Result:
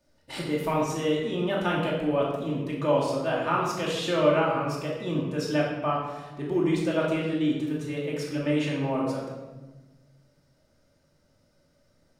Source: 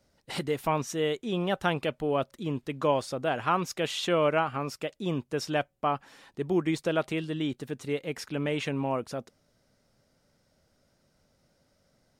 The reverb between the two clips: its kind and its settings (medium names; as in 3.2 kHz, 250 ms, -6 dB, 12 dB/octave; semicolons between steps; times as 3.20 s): simulated room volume 720 m³, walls mixed, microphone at 2.6 m; trim -4.5 dB